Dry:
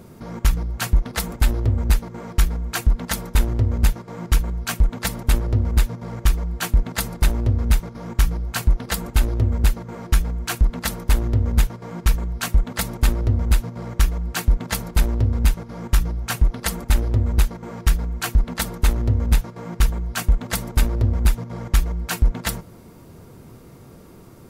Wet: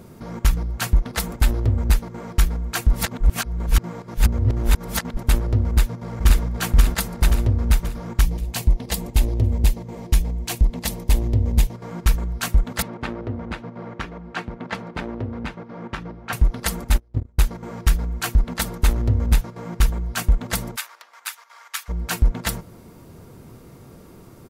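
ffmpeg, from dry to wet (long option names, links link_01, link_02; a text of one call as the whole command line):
ffmpeg -i in.wav -filter_complex "[0:a]asplit=2[link_01][link_02];[link_02]afade=type=in:start_time=5.67:duration=0.01,afade=type=out:start_time=6.41:duration=0.01,aecho=0:1:530|1060|1590|2120|2650|3180|3710:0.944061|0.47203|0.236015|0.118008|0.0590038|0.0295019|0.014751[link_03];[link_01][link_03]amix=inputs=2:normalize=0,asettb=1/sr,asplit=3[link_04][link_05][link_06];[link_04]atrim=end=8.214[link_07];[link_05]atrim=start=8.21:end=11.75,asetpts=PTS-STARTPTS,afade=type=in:duration=0.004:curve=qsin,afade=type=out:start_time=3.536:duration=0.004:curve=qsin,equalizer=frequency=1400:width_type=o:width=0.62:gain=-13[link_08];[link_06]atrim=start=11.746[link_09];[link_07][link_08]acrossfade=duration=0.004:curve1=hsin:curve2=qsin[link_10];[link_10][link_09]acrossfade=duration=0.004:curve1=qsin:curve2=hsin,asettb=1/sr,asplit=3[link_11][link_12][link_13];[link_11]atrim=end=12.824[link_14];[link_12]atrim=start=12.82:end=16.33,asetpts=PTS-STARTPTS,afade=type=in:duration=0.004:curve=qsin,afade=type=out:start_time=3.506:duration=0.004:curve=qsin,highpass=180,lowpass=2500[link_15];[link_13]atrim=start=16.326[link_16];[link_14][link_15]acrossfade=duration=0.004:curve1=hsin:curve2=qsin[link_17];[link_17][link_16]acrossfade=duration=0.004:curve1=qsin:curve2=hsin,asplit=3[link_18][link_19][link_20];[link_18]afade=type=out:start_time=16.89:duration=0.02[link_21];[link_19]agate=range=-34dB:threshold=-16dB:ratio=16:release=100:detection=peak,afade=type=in:start_time=16.89:duration=0.02,afade=type=out:start_time=17.41:duration=0.02[link_22];[link_20]afade=type=in:start_time=17.41:duration=0.02[link_23];[link_21][link_22][link_23]amix=inputs=3:normalize=0,asplit=3[link_24][link_25][link_26];[link_24]afade=type=out:start_time=20.75:duration=0.02[link_27];[link_25]highpass=frequency=1100:width=0.5412,highpass=frequency=1100:width=1.3066,afade=type=in:start_time=20.75:duration=0.02,afade=type=out:start_time=21.88:duration=0.02[link_28];[link_26]afade=type=in:start_time=21.88:duration=0.02[link_29];[link_27][link_28][link_29]amix=inputs=3:normalize=0,asplit=3[link_30][link_31][link_32];[link_30]atrim=end=2.932[link_33];[link_31]atrim=start=2.928:end=5.172,asetpts=PTS-STARTPTS,areverse[link_34];[link_32]atrim=start=5.168[link_35];[link_33][link_34]acrossfade=duration=0.004:curve1=hsin:curve2=hsin[link_36];[link_36][link_35]acrossfade=duration=0.004:curve1=hsin:curve2=hsin" out.wav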